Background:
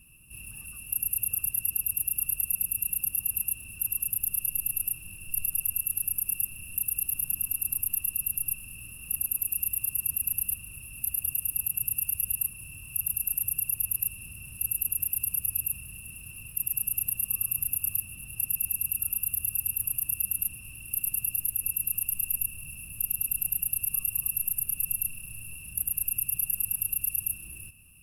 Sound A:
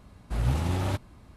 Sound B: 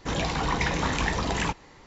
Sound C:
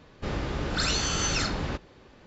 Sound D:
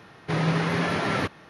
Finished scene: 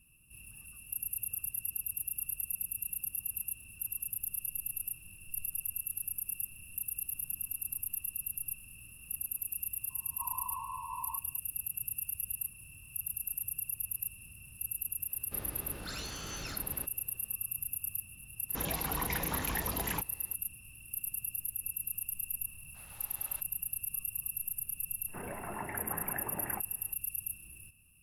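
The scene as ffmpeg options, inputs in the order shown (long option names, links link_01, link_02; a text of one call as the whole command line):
ffmpeg -i bed.wav -i cue0.wav -i cue1.wav -i cue2.wav -i cue3.wav -filter_complex "[2:a]asplit=2[link_01][link_02];[0:a]volume=-8.5dB[link_03];[4:a]asuperpass=centerf=1000:order=20:qfactor=4.7[link_04];[1:a]highpass=890[link_05];[link_02]highpass=frequency=200:width_type=q:width=0.5412,highpass=frequency=200:width_type=q:width=1.307,lowpass=frequency=2100:width_type=q:width=0.5176,lowpass=frequency=2100:width_type=q:width=0.7071,lowpass=frequency=2100:width_type=q:width=1.932,afreqshift=-91[link_06];[link_04]atrim=end=1.49,asetpts=PTS-STARTPTS,volume=-3dB,afade=type=in:duration=0.004:curve=hsin,afade=type=out:start_time=1.486:duration=0.004:curve=hsin,adelay=9890[link_07];[3:a]atrim=end=2.26,asetpts=PTS-STARTPTS,volume=-14.5dB,afade=type=in:duration=0.004:curve=hsin,afade=type=out:start_time=2.256:duration=0.004:curve=hsin,adelay=15090[link_08];[link_01]atrim=end=1.86,asetpts=PTS-STARTPTS,volume=-10dB,afade=type=in:duration=0.004:curve=hsin,afade=type=out:start_time=1.856:duration=0.004:curve=hsin,adelay=18490[link_09];[link_05]atrim=end=1.36,asetpts=PTS-STARTPTS,volume=-16.5dB,afade=type=in:duration=0.004:curve=hsin,afade=type=out:start_time=1.356:duration=0.004:curve=hsin,adelay=989604S[link_10];[link_06]atrim=end=1.86,asetpts=PTS-STARTPTS,volume=-12dB,afade=type=in:duration=0.004:curve=hsin,afade=type=out:start_time=1.856:duration=0.004:curve=hsin,adelay=25080[link_11];[link_03][link_07][link_08][link_09][link_10][link_11]amix=inputs=6:normalize=0" out.wav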